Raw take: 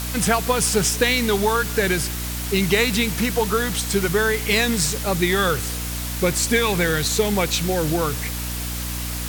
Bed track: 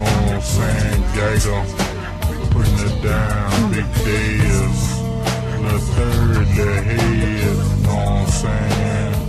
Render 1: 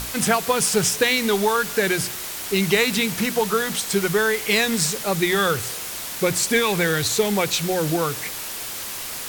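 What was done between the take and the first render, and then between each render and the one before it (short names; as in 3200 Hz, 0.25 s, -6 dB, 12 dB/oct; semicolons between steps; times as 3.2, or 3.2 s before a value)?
notches 60/120/180/240/300 Hz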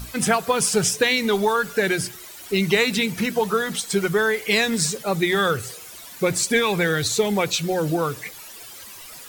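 denoiser 13 dB, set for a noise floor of -32 dBFS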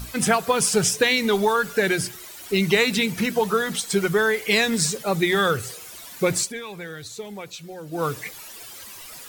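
6.39–8.05 dip -14.5 dB, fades 0.14 s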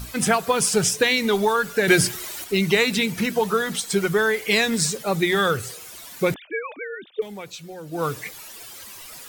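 1.88–2.44 gain +7 dB; 6.34–7.22 sine-wave speech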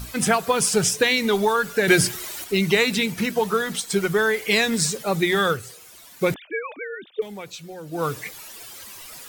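2.95–4.18 G.711 law mismatch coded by A; 5.39–6.24 upward expander, over -31 dBFS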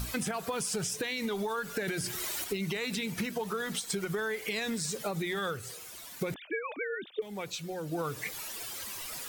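limiter -15 dBFS, peak gain reduction 11.5 dB; compressor 6:1, threshold -31 dBFS, peak gain reduction 11 dB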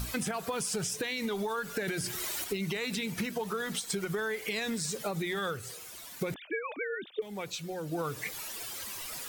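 nothing audible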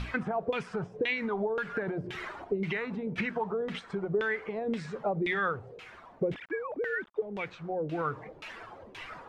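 requantised 8-bit, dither none; LFO low-pass saw down 1.9 Hz 410–2900 Hz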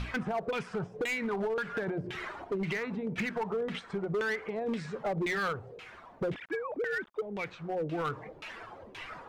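overloaded stage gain 27.5 dB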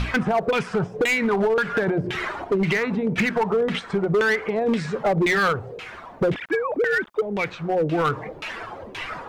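gain +11.5 dB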